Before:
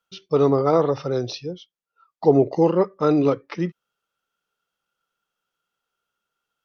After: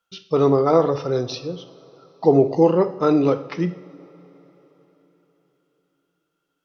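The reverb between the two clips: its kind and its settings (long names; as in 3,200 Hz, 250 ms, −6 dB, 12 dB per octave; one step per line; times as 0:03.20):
coupled-rooms reverb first 0.56 s, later 4.2 s, from −19 dB, DRR 9 dB
level +1 dB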